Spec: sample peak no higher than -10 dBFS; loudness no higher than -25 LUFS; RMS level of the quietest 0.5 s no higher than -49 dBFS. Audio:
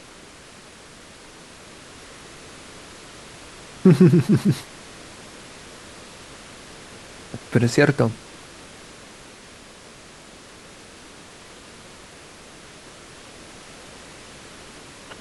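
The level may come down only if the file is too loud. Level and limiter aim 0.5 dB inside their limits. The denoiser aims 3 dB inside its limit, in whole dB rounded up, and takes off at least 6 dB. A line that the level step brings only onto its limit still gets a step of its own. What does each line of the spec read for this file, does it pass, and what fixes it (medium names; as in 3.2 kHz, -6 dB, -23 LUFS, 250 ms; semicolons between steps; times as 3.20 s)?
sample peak -3.5 dBFS: fail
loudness -18.5 LUFS: fail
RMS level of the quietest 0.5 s -45 dBFS: fail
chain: trim -7 dB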